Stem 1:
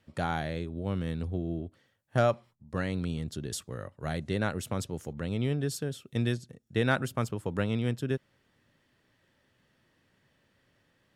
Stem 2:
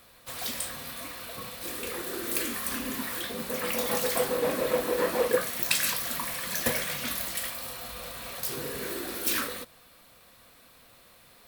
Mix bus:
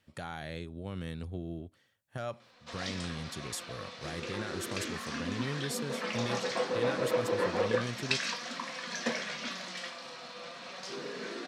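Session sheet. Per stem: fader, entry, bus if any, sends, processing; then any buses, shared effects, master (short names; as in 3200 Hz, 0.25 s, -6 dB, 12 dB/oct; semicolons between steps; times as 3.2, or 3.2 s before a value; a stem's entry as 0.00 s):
-3.0 dB, 0.00 s, no send, tilt shelf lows -3.5 dB, about 1200 Hz; limiter -23.5 dBFS, peak gain reduction 11 dB
+1.5 dB, 2.40 s, no send, elliptic band-pass 180–5800 Hz, stop band 50 dB; flange 0.32 Hz, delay 3.7 ms, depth 2.6 ms, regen +69%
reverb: off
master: dry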